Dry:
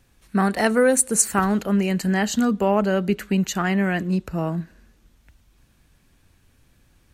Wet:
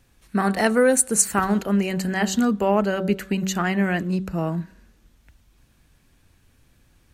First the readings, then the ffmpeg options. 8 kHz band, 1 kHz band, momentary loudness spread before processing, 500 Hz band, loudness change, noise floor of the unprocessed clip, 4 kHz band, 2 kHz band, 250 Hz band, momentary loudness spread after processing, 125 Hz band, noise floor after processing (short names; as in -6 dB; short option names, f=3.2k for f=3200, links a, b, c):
0.0 dB, 0.0 dB, 9 LU, -0.5 dB, -0.5 dB, -60 dBFS, 0.0 dB, 0.0 dB, -1.0 dB, 9 LU, -1.5 dB, -60 dBFS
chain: -af "bandreject=f=190.6:t=h:w=4,bandreject=f=381.2:t=h:w=4,bandreject=f=571.8:t=h:w=4,bandreject=f=762.4:t=h:w=4,bandreject=f=953:t=h:w=4,bandreject=f=1.1436k:t=h:w=4,bandreject=f=1.3342k:t=h:w=4,bandreject=f=1.5248k:t=h:w=4,bandreject=f=1.7154k:t=h:w=4"